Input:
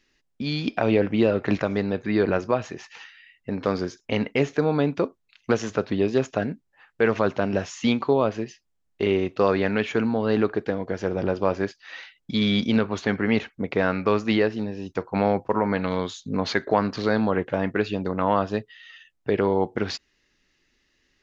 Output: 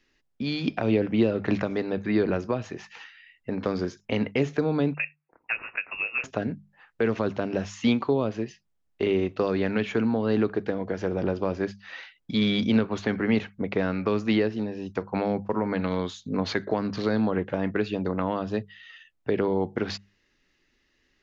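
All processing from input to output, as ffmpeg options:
-filter_complex "[0:a]asettb=1/sr,asplit=3[a][b][c];[a]atrim=end=4.944[d];[b]atrim=start=4.94:end=6.24,asetpts=PTS-STARTPTS,afade=t=in:d=0.004:c=qsin,afade=t=out:st=1.296:d=0.004:c=qsin,highpass=480,lowpass=f=2.6k:t=q:w=0.5098,lowpass=f=2.6k:t=q:w=0.6013,lowpass=f=2.6k:t=q:w=0.9,lowpass=f=2.6k:t=q:w=2.563,afreqshift=-3000[e];[c]atrim=start=6.236[f];[d][e]acrossfade=d=0.004:c1=hsin:c2=qsin[g];[g][f]acrossfade=d=0.004:c1=qsin:c2=hsin,highshelf=f=4.9k:g=-7,bandreject=f=50:t=h:w=6,bandreject=f=100:t=h:w=6,bandreject=f=150:t=h:w=6,bandreject=f=200:t=h:w=6,acrossover=split=380|3000[h][i][j];[i]acompressor=threshold=-28dB:ratio=6[k];[h][k][j]amix=inputs=3:normalize=0"

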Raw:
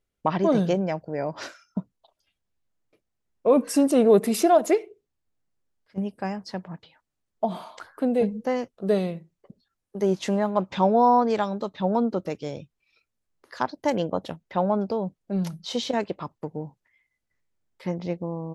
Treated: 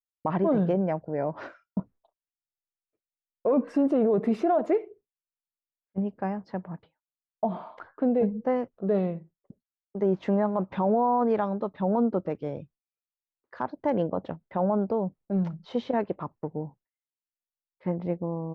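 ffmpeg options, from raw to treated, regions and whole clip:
-filter_complex "[0:a]asettb=1/sr,asplit=3[a][b][c];[a]atrim=end=1.794[d];[b]atrim=start=1.79:end=3.52,asetpts=PTS-STARTPTS,afade=t=in:d=0.004:c=qsin,afade=t=out:st=1.726:d=0.004:c=qsin,equalizer=f=160:w=2.3:g=-6.5,acontrast=27[e];[c]atrim=start=3.516[f];[d][e]acrossfade=d=0.004:c1=hsin:c2=qsin[g];[g][f]acrossfade=d=0.004:c1=qsin:c2=hsin,agate=range=-33dB:threshold=-44dB:ratio=3:detection=peak,lowpass=1.5k,alimiter=limit=-16dB:level=0:latency=1:release=16"

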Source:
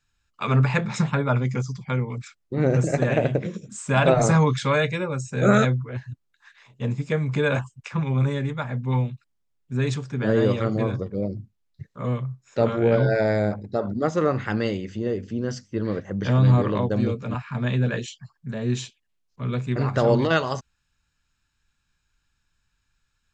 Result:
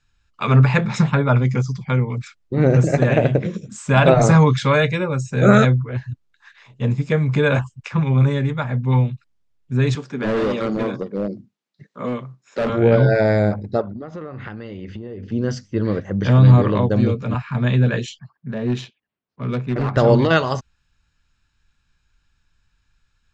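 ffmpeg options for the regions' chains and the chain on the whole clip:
-filter_complex "[0:a]asettb=1/sr,asplit=3[a][b][c];[a]atrim=end=9.954[d];[b]atrim=start=9.95:end=12.7,asetpts=PTS-STARTPTS,afade=t=in:d=0.004:c=qsin,afade=t=out:st=2.746:d=0.004:c=qsin,highpass=f=190:w=0.5412,highpass=f=190:w=1.3066,asoftclip=type=hard:threshold=-22dB[e];[c]atrim=start=12.696[f];[d][e]acrossfade=d=0.004:c1=hsin:c2=qsin[g];[g][f]acrossfade=d=0.004:c1=qsin:c2=hsin,asettb=1/sr,asplit=3[h][i][j];[h]atrim=end=13.814[k];[i]atrim=start=13.81:end=15.32,asetpts=PTS-STARTPTS,afade=t=in:d=0.004:c=qsin,afade=t=out:st=1.506:d=0.004:c=qsin,lowpass=3.7k,acompressor=threshold=-33dB:ratio=16:attack=3.2:release=140:knee=1:detection=peak[l];[j]atrim=start=15.316[m];[k][l]acrossfade=d=0.004:c1=hsin:c2=qsin[n];[n][m]acrossfade=d=0.004:c1=qsin:c2=hsin,asettb=1/sr,asplit=3[o][p][q];[o]atrim=end=18.194[r];[p]atrim=start=18.19:end=19.97,asetpts=PTS-STARTPTS,afade=t=in:d=0.004:c=qsin,afade=t=out:st=1.776:d=0.004:c=qsin,highpass=150,adynamicsmooth=sensitivity=4:basefreq=2.5k,asoftclip=type=hard:threshold=-21dB[s];[q]atrim=start=19.966[t];[r][s]acrossfade=d=0.004:c1=hsin:c2=qsin[u];[u][t]acrossfade=d=0.004:c1=qsin:c2=hsin,lowpass=6.5k,lowshelf=f=110:g=5,volume=4.5dB"

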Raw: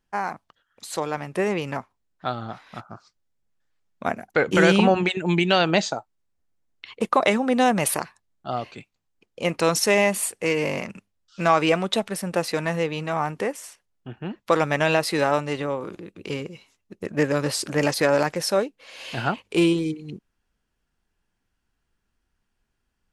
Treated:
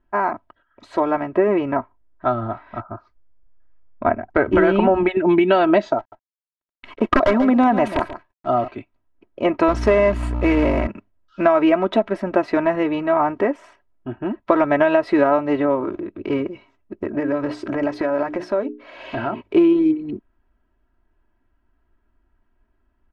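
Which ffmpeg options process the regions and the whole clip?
-filter_complex "[0:a]asettb=1/sr,asplit=3[a][b][c];[a]atrim=end=1.314[d];[b]atrim=start=1.31:end=5.16,asetpts=PTS-STARTPTS,afade=t=in:d=0.004:c=qsin,afade=t=out:st=3.846:d=0.004:c=qsin,lowpass=f=3k:p=1,asubboost=boost=4:cutoff=110[e];[c]atrim=start=5.156[f];[d][e]acrossfade=d=0.004:c1=hsin:c2=qsin[g];[g][f]acrossfade=d=0.004:c1=qsin:c2=hsin,asettb=1/sr,asplit=3[h][i][j];[h]atrim=end=5.984[k];[i]atrim=start=5.98:end=8.68,asetpts=PTS-STARTPTS,afade=t=in:d=0.004:c=qsin,afade=t=out:st=2.696:d=0.004:c=qsin,aeval=exprs='(mod(3.16*val(0)+1,2)-1)/3.16':c=same,acrusher=bits=8:dc=4:mix=0:aa=0.000001,aecho=1:1:138:0.224,atrim=end_sample=119070[l];[j]atrim=start=8.676[m];[k][l]acrossfade=d=0.004:c1=hsin:c2=qsin[n];[n][m]acrossfade=d=0.004:c1=qsin:c2=hsin,asettb=1/sr,asplit=3[o][p][q];[o]atrim=end=9.684[r];[p]atrim=start=9.68:end=10.87,asetpts=PTS-STARTPTS,afade=t=in:d=0.004:c=qsin,afade=t=out:st=1.186:d=0.004:c=qsin,lowshelf=f=150:g=2.5,aeval=exprs='val(0)+0.0251*(sin(2*PI*60*n/s)+sin(2*PI*2*60*n/s)/2+sin(2*PI*3*60*n/s)/3+sin(2*PI*4*60*n/s)/4+sin(2*PI*5*60*n/s)/5)':c=same,acrusher=bits=2:mode=log:mix=0:aa=0.000001[s];[q]atrim=start=10.866[t];[r][s]acrossfade=d=0.004:c1=hsin:c2=qsin[u];[u][t]acrossfade=d=0.004:c1=qsin:c2=hsin,asettb=1/sr,asplit=3[v][w][x];[v]atrim=end=17.034[y];[w]atrim=start=17.03:end=19.41,asetpts=PTS-STARTPTS,afade=t=in:d=0.004:c=qsin,afade=t=out:st=2.376:d=0.004:c=qsin,bandreject=f=60:t=h:w=6,bandreject=f=120:t=h:w=6,bandreject=f=180:t=h:w=6,bandreject=f=240:t=h:w=6,bandreject=f=300:t=h:w=6,bandreject=f=360:t=h:w=6,bandreject=f=420:t=h:w=6,acompressor=threshold=-27dB:ratio=4:attack=3.2:release=140:knee=1:detection=peak[z];[x]atrim=start=19.406[aa];[y][z]acrossfade=d=0.004:c1=hsin:c2=qsin[ab];[ab][aa]acrossfade=d=0.004:c1=qsin:c2=hsin,lowpass=1.4k,aecho=1:1:3.1:0.8,acompressor=threshold=-19dB:ratio=6,volume=7.5dB"

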